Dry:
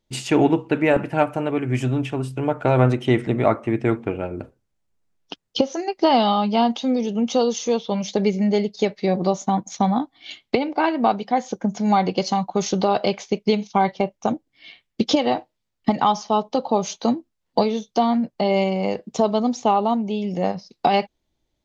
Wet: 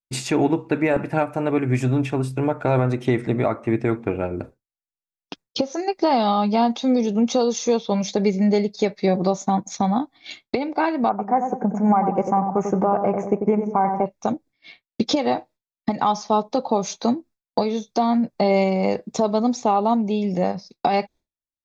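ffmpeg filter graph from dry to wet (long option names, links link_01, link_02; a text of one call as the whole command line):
ffmpeg -i in.wav -filter_complex "[0:a]asettb=1/sr,asplit=3[link_01][link_02][link_03];[link_01]atrim=end=11.094[link_04];[link_02]atrim=start=11.09:end=14.06,asetpts=PTS-STARTPTS,afade=type=in:duration=0.004:curve=qsin,afade=type=out:start_time=2.966:duration=0.004:curve=qsin,asuperstop=centerf=4100:order=4:qfactor=0.54,equalizer=frequency=1000:width_type=o:width=1.1:gain=5.5,asplit=2[link_05][link_06];[link_06]adelay=94,lowpass=frequency=870:poles=1,volume=-6dB,asplit=2[link_07][link_08];[link_08]adelay=94,lowpass=frequency=870:poles=1,volume=0.52,asplit=2[link_09][link_10];[link_10]adelay=94,lowpass=frequency=870:poles=1,volume=0.52,asplit=2[link_11][link_12];[link_12]adelay=94,lowpass=frequency=870:poles=1,volume=0.52,asplit=2[link_13][link_14];[link_14]adelay=94,lowpass=frequency=870:poles=1,volume=0.52,asplit=2[link_15][link_16];[link_16]adelay=94,lowpass=frequency=870:poles=1,volume=0.52[link_17];[link_05][link_07][link_09][link_11][link_13][link_15][link_17]amix=inputs=7:normalize=0,atrim=end_sample=130977[link_18];[link_03]atrim=start=14.056[link_19];[link_04][link_18]acrossfade=duration=0.004:curve1=hsin:curve2=qsin[link_20];[link_20][link_19]acrossfade=duration=0.004:curve1=qsin:curve2=hsin,agate=range=-33dB:threshold=-40dB:ratio=3:detection=peak,bandreject=frequency=3000:width=5.4,alimiter=limit=-11.5dB:level=0:latency=1:release=300,volume=2.5dB" out.wav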